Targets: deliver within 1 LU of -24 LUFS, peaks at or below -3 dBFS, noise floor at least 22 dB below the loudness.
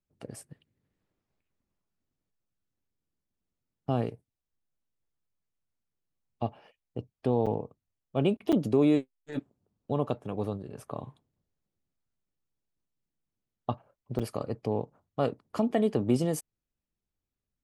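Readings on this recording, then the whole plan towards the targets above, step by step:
dropouts 3; longest dropout 6.5 ms; loudness -31.0 LUFS; peak level -13.0 dBFS; loudness target -24.0 LUFS
-> interpolate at 7.46/8.52/14.19 s, 6.5 ms; trim +7 dB

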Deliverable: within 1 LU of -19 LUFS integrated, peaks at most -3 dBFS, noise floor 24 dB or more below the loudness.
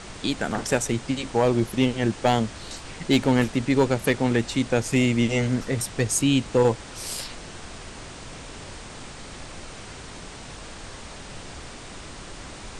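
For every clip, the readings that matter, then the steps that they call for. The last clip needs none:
clipped samples 0.2%; clipping level -11.5 dBFS; noise floor -41 dBFS; noise floor target -48 dBFS; loudness -23.5 LUFS; peak level -11.5 dBFS; loudness target -19.0 LUFS
-> clip repair -11.5 dBFS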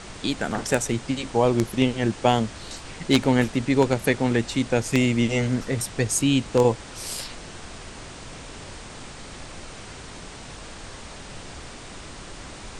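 clipped samples 0.0%; noise floor -41 dBFS; noise floor target -47 dBFS
-> noise print and reduce 6 dB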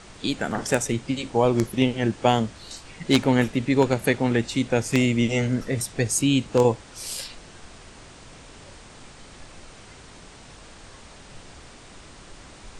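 noise floor -46 dBFS; noise floor target -47 dBFS
-> noise print and reduce 6 dB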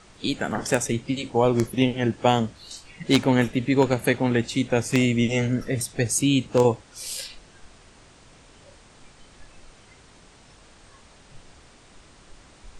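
noise floor -52 dBFS; loudness -23.0 LUFS; peak level -2.5 dBFS; loudness target -19.0 LUFS
-> trim +4 dB; peak limiter -3 dBFS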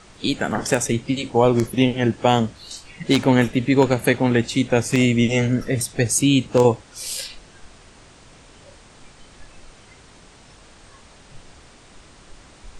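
loudness -19.5 LUFS; peak level -3.0 dBFS; noise floor -48 dBFS

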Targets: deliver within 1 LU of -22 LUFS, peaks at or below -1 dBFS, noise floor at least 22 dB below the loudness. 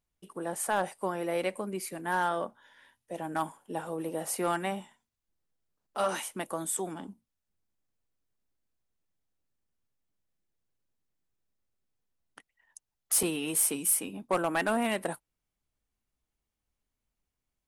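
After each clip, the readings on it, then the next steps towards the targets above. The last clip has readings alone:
clipped samples 0.2%; clipping level -20.0 dBFS; dropouts 1; longest dropout 3.3 ms; loudness -31.0 LUFS; peak level -20.0 dBFS; loudness target -22.0 LUFS
-> clip repair -20 dBFS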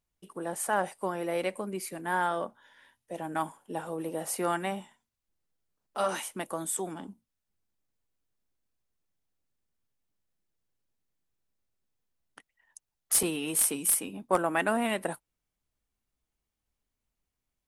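clipped samples 0.0%; dropouts 1; longest dropout 3.3 ms
-> interpolate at 13.23 s, 3.3 ms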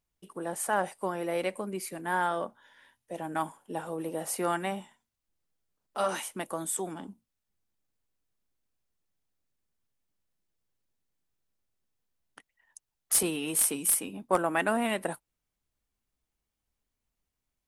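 dropouts 0; loudness -30.5 LUFS; peak level -11.0 dBFS; loudness target -22.0 LUFS
-> trim +8.5 dB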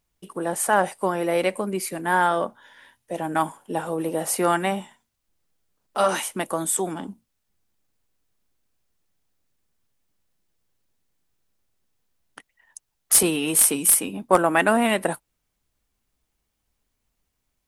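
loudness -22.0 LUFS; peak level -2.5 dBFS; noise floor -77 dBFS

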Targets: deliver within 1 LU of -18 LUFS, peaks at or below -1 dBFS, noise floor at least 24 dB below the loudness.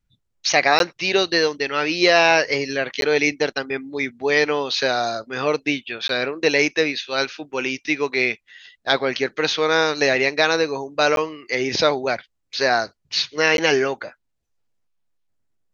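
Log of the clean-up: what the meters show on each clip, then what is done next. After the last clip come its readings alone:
dropouts 5; longest dropout 12 ms; loudness -20.0 LUFS; peak level -2.0 dBFS; loudness target -18.0 LUFS
-> interpolate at 0.79/3.01/6.08/11.16/13.57 s, 12 ms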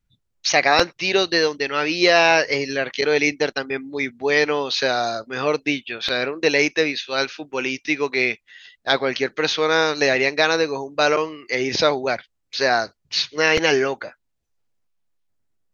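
dropouts 0; loudness -20.0 LUFS; peak level -2.0 dBFS; loudness target -18.0 LUFS
-> trim +2 dB; peak limiter -1 dBFS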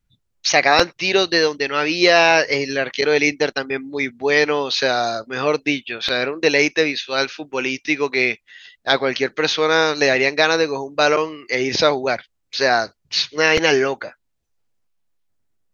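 loudness -18.0 LUFS; peak level -1.0 dBFS; noise floor -71 dBFS

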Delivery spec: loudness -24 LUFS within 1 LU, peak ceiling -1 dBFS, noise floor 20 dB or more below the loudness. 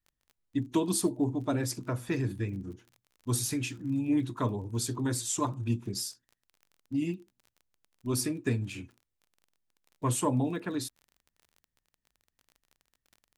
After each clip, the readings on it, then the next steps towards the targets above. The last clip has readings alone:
tick rate 32 per s; loudness -32.0 LUFS; peak level -16.0 dBFS; loudness target -24.0 LUFS
-> de-click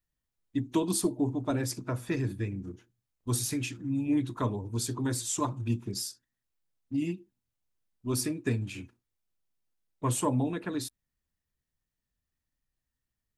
tick rate 0 per s; loudness -32.0 LUFS; peak level -16.0 dBFS; loudness target -24.0 LUFS
-> trim +8 dB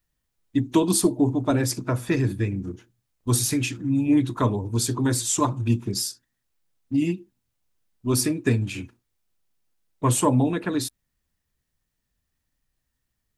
loudness -24.0 LUFS; peak level -8.0 dBFS; noise floor -79 dBFS

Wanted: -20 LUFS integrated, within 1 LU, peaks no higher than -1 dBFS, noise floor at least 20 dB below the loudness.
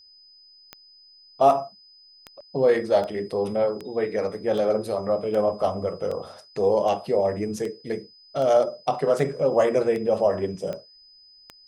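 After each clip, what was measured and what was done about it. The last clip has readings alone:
clicks found 15; steady tone 5 kHz; tone level -50 dBFS; loudness -24.0 LUFS; peak level -7.5 dBFS; loudness target -20.0 LUFS
-> de-click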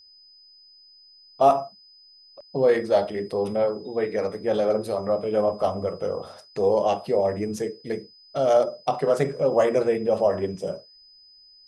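clicks found 0; steady tone 5 kHz; tone level -50 dBFS
-> band-stop 5 kHz, Q 30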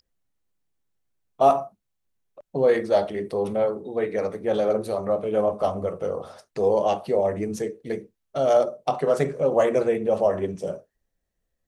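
steady tone not found; loudness -24.0 LUFS; peak level -7.5 dBFS; loudness target -20.0 LUFS
-> trim +4 dB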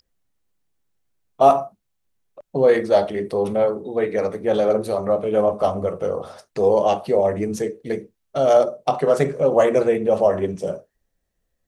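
loudness -20.0 LUFS; peak level -3.5 dBFS; noise floor -75 dBFS

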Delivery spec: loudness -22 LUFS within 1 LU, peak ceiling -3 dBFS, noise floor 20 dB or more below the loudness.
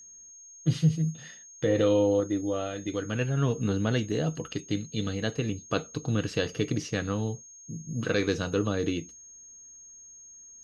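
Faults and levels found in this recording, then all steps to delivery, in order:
steady tone 6.5 kHz; tone level -47 dBFS; loudness -29.0 LUFS; peak level -11.5 dBFS; loudness target -22.0 LUFS
-> band-stop 6.5 kHz, Q 30; trim +7 dB

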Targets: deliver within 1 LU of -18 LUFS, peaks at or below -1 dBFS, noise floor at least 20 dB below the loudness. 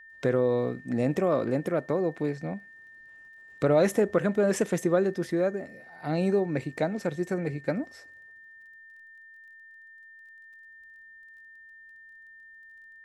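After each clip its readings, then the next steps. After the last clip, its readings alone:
tick rate 18 per s; steady tone 1.8 kHz; tone level -48 dBFS; loudness -27.5 LUFS; peak level -11.5 dBFS; loudness target -18.0 LUFS
-> de-click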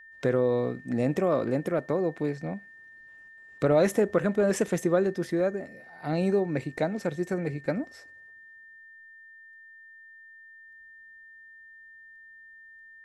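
tick rate 0 per s; steady tone 1.8 kHz; tone level -48 dBFS
-> band-stop 1.8 kHz, Q 30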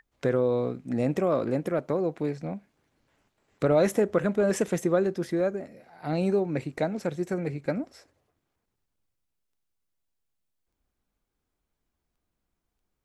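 steady tone not found; loudness -27.5 LUFS; peak level -12.0 dBFS; loudness target -18.0 LUFS
-> trim +9.5 dB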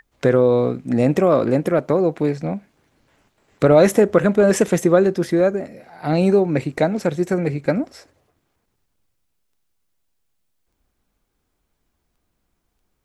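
loudness -18.0 LUFS; peak level -2.5 dBFS; noise floor -72 dBFS

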